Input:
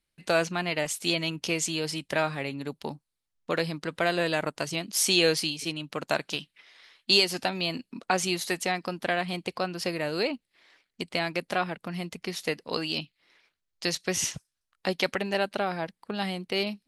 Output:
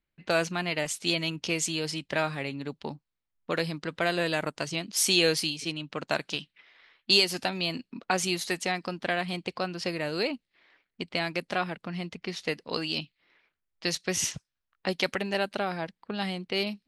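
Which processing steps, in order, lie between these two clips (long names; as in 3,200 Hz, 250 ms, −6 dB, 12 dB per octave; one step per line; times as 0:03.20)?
low-pass that shuts in the quiet parts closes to 2,300 Hz, open at −24 dBFS
parametric band 690 Hz −2 dB 2 octaves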